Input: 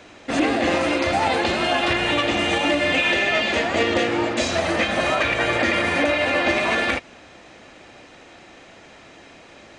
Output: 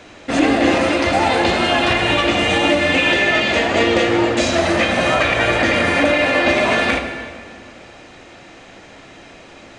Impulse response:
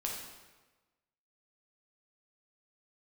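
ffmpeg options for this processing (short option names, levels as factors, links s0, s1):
-filter_complex "[0:a]asplit=2[s0][s1];[1:a]atrim=start_sample=2205,asetrate=26019,aresample=44100,lowshelf=f=200:g=6[s2];[s1][s2]afir=irnorm=-1:irlink=0,volume=0.447[s3];[s0][s3]amix=inputs=2:normalize=0"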